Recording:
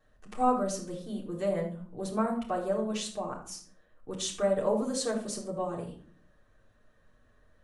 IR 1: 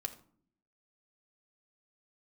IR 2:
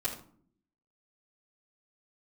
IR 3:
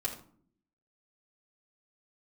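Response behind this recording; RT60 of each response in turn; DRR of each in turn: 2; 0.55, 0.55, 0.55 seconds; 4.0, −11.5, −5.0 decibels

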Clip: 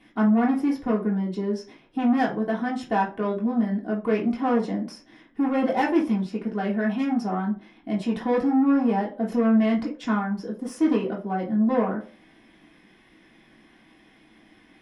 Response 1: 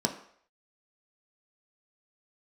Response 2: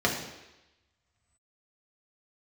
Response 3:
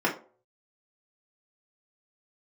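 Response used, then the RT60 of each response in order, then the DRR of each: 3; 0.60, 1.0, 0.45 seconds; 2.5, −2.0, −4.5 decibels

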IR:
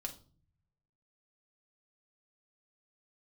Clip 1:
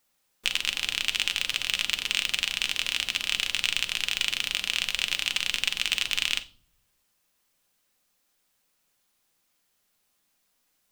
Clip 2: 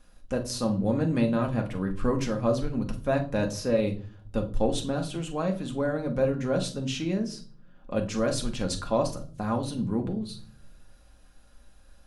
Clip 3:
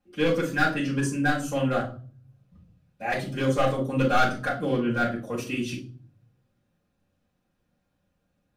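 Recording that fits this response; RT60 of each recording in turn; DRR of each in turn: 2; non-exponential decay, 0.45 s, 0.40 s; 8.0, 2.0, −7.5 decibels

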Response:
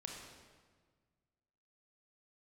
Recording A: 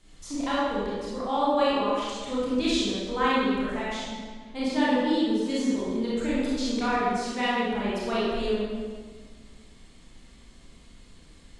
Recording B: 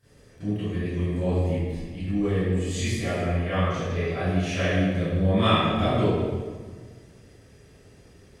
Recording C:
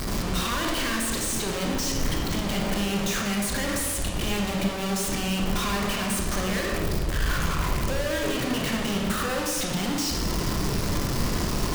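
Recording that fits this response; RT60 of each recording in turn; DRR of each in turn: C; 1.5, 1.5, 1.6 seconds; −9.5, −17.5, 0.0 decibels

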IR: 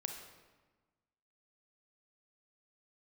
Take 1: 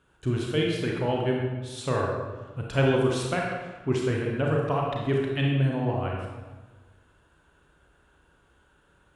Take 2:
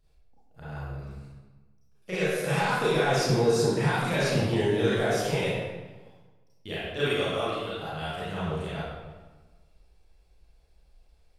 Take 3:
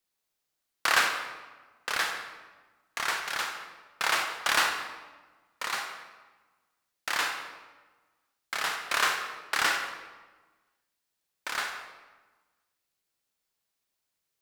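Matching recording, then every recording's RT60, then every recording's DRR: 3; 1.3, 1.3, 1.3 seconds; −2.0, −11.0, 3.5 decibels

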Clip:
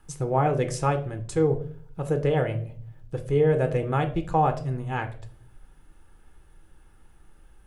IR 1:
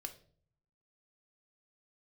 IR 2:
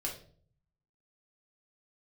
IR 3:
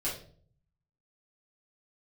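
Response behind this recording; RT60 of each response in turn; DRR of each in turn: 1; 0.50, 0.50, 0.50 seconds; 6.0, −2.0, −8.5 decibels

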